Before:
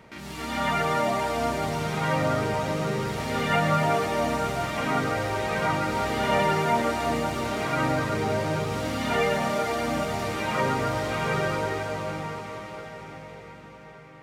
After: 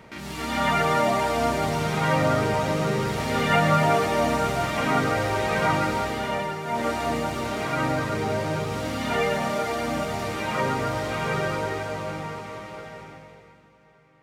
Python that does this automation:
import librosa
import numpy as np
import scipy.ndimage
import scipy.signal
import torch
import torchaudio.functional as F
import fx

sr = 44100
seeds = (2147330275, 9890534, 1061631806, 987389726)

y = fx.gain(x, sr, db=fx.line((5.84, 3.0), (6.61, -8.5), (6.86, 0.0), (12.97, 0.0), (13.71, -11.0)))